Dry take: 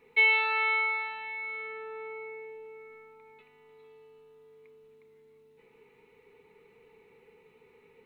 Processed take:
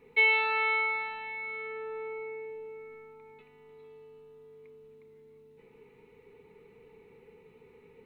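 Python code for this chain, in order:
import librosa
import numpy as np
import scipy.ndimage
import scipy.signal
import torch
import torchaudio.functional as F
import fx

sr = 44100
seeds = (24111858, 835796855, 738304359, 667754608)

y = fx.low_shelf(x, sr, hz=450.0, db=9.5)
y = y * librosa.db_to_amplitude(-1.5)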